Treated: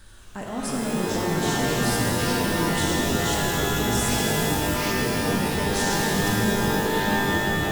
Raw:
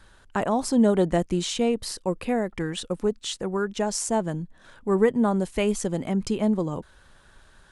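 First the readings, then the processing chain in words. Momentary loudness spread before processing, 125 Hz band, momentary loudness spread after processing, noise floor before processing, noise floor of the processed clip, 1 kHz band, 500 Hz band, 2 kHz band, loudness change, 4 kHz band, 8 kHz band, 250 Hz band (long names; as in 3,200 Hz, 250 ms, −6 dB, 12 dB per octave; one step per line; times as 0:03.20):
10 LU, +6.0 dB, 4 LU, −55 dBFS, −35 dBFS, +5.5 dB, −1.0 dB, +12.0 dB, +2.5 dB, +8.0 dB, +7.0 dB, 0.0 dB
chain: high-shelf EQ 8,300 Hz +7.5 dB
echo with a time of its own for lows and highs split 350 Hz, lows 640 ms, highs 229 ms, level −14 dB
reversed playback
downward compressor, threshold −30 dBFS, peak gain reduction 15 dB
reversed playback
delay with pitch and tempo change per echo 183 ms, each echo −6 semitones, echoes 3
parametric band 940 Hz −6.5 dB 2.8 octaves
in parallel at −3.5 dB: gain into a clipping stage and back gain 35 dB
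on the sum: bit reduction 11 bits
reverb with rising layers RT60 3.6 s, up +12 semitones, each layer −2 dB, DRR −3 dB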